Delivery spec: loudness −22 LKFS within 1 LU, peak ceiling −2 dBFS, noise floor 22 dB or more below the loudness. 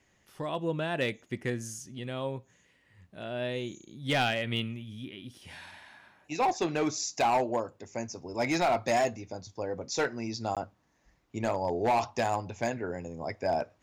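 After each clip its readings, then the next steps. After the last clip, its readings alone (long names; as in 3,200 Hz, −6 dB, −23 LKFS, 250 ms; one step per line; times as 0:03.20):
share of clipped samples 0.8%; peaks flattened at −21.0 dBFS; number of dropouts 1; longest dropout 17 ms; integrated loudness −31.5 LKFS; sample peak −21.0 dBFS; target loudness −22.0 LKFS
→ clipped peaks rebuilt −21 dBFS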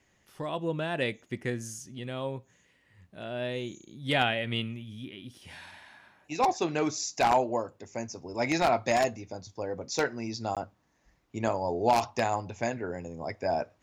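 share of clipped samples 0.0%; number of dropouts 1; longest dropout 17 ms
→ repair the gap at 0:10.55, 17 ms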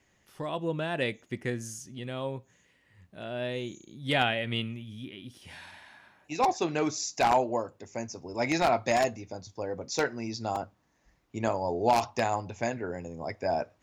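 number of dropouts 0; integrated loudness −30.5 LKFS; sample peak −12.0 dBFS; target loudness −22.0 LKFS
→ level +8.5 dB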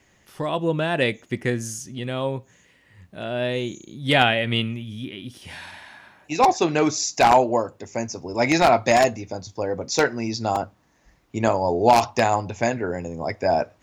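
integrated loudness −22.0 LKFS; sample peak −3.5 dBFS; background noise floor −60 dBFS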